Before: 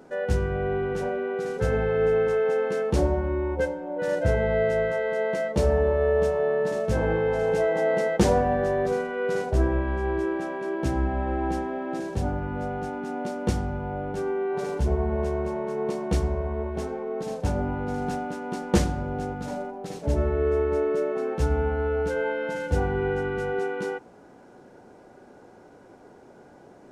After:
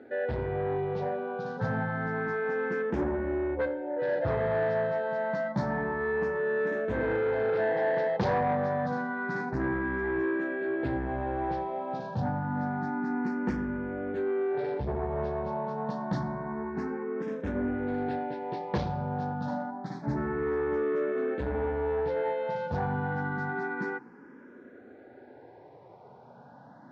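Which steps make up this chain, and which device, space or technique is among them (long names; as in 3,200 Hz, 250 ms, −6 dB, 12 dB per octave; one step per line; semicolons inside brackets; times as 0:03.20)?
barber-pole phaser into a guitar amplifier (frequency shifter mixed with the dry sound +0.28 Hz; soft clipping −24 dBFS, distortion −12 dB; loudspeaker in its box 100–4,300 Hz, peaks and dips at 130 Hz +7 dB, 250 Hz +6 dB, 910 Hz +5 dB, 1,700 Hz +7 dB, 2,900 Hz −7 dB)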